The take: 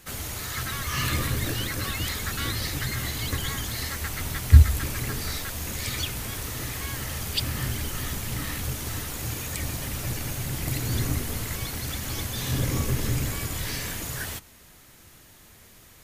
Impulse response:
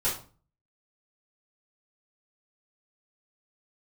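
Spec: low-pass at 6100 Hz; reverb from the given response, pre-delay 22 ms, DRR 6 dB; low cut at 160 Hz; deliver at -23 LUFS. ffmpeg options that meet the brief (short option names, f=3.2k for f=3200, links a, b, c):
-filter_complex "[0:a]highpass=160,lowpass=6.1k,asplit=2[a][b];[1:a]atrim=start_sample=2205,adelay=22[c];[b][c]afir=irnorm=-1:irlink=0,volume=-15dB[d];[a][d]amix=inputs=2:normalize=0,volume=8.5dB"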